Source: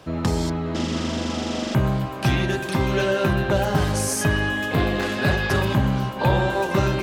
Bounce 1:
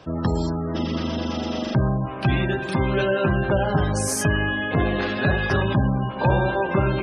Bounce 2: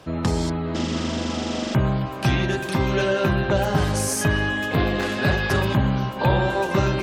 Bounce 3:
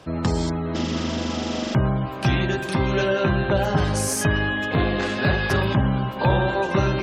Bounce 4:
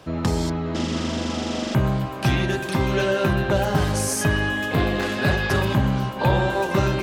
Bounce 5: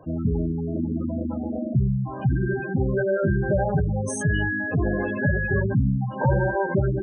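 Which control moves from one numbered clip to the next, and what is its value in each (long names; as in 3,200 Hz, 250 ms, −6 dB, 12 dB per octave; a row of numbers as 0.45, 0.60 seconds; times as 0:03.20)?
gate on every frequency bin, under each frame's peak: −25, −45, −35, −60, −10 decibels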